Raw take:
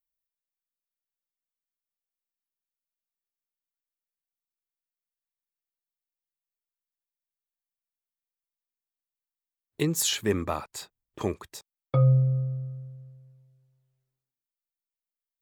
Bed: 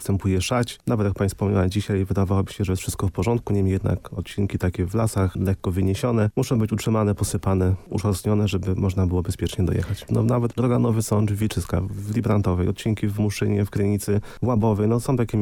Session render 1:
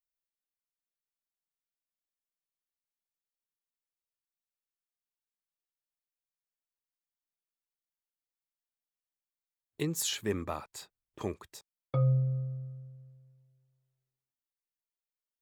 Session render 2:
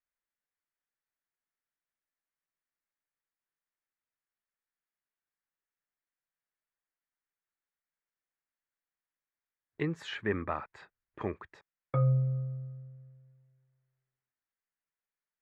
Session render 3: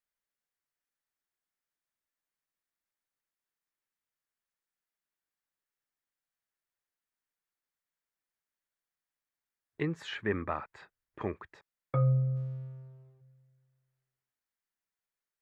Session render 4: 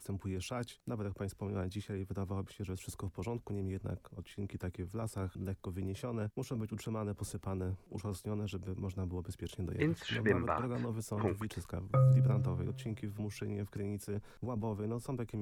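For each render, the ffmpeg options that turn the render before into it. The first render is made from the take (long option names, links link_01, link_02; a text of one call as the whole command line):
ffmpeg -i in.wav -af "volume=-6.5dB" out.wav
ffmpeg -i in.wav -af "lowpass=frequency=1800:width_type=q:width=2.4" out.wav
ffmpeg -i in.wav -filter_complex "[0:a]asplit=3[link_01][link_02][link_03];[link_01]afade=type=out:start_time=12.35:duration=0.02[link_04];[link_02]aeval=exprs='sgn(val(0))*max(abs(val(0))-0.001,0)':channel_layout=same,afade=type=in:start_time=12.35:duration=0.02,afade=type=out:start_time=13.2:duration=0.02[link_05];[link_03]afade=type=in:start_time=13.2:duration=0.02[link_06];[link_04][link_05][link_06]amix=inputs=3:normalize=0" out.wav
ffmpeg -i in.wav -i bed.wav -filter_complex "[1:a]volume=-18dB[link_01];[0:a][link_01]amix=inputs=2:normalize=0" out.wav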